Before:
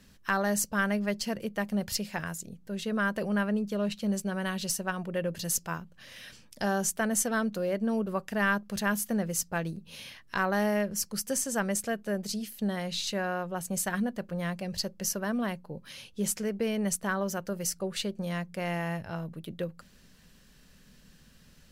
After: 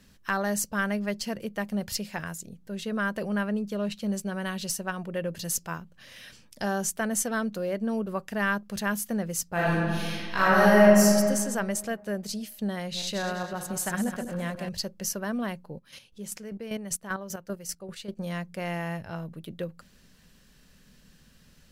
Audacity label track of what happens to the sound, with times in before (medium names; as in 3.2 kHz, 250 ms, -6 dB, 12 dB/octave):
9.530000	11.070000	reverb throw, RT60 1.9 s, DRR -9 dB
12.820000	14.690000	backward echo that repeats 102 ms, feedback 65%, level -7.5 dB
15.730000	18.170000	square tremolo 5.1 Hz, depth 65%, duty 30%